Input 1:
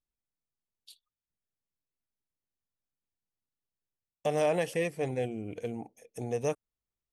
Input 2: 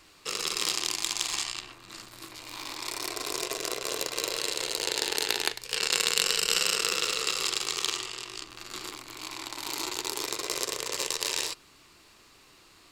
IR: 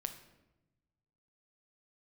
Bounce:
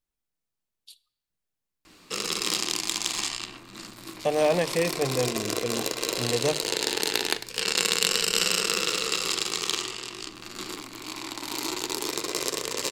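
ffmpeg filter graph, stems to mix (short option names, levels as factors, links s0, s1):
-filter_complex "[0:a]volume=1.26,asplit=2[s0][s1];[s1]volume=0.422[s2];[1:a]equalizer=f=220:t=o:w=1.1:g=10.5,adelay=1850,volume=0.891,asplit=2[s3][s4];[s4]volume=0.422[s5];[2:a]atrim=start_sample=2205[s6];[s2][s5]amix=inputs=2:normalize=0[s7];[s7][s6]afir=irnorm=-1:irlink=0[s8];[s0][s3][s8]amix=inputs=3:normalize=0,bandreject=f=50:t=h:w=6,bandreject=f=100:t=h:w=6,bandreject=f=150:t=h:w=6"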